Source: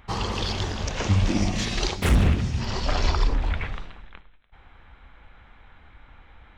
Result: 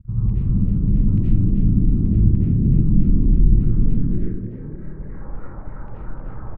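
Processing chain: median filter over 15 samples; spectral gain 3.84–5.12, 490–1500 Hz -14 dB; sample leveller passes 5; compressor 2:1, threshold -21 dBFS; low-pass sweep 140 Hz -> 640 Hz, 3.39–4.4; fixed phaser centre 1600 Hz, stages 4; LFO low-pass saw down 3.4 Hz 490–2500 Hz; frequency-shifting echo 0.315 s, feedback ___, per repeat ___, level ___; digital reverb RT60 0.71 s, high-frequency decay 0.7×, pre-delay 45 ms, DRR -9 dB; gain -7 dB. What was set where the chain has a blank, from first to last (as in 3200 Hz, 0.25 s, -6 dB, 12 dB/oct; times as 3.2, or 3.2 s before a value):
33%, +72 Hz, -6 dB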